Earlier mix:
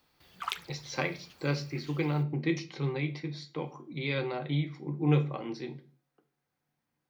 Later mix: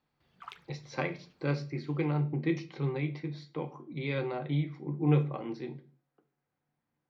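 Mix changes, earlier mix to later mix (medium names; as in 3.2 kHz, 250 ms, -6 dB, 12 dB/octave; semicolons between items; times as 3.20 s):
background -9.0 dB; master: add low-pass 1.9 kHz 6 dB/octave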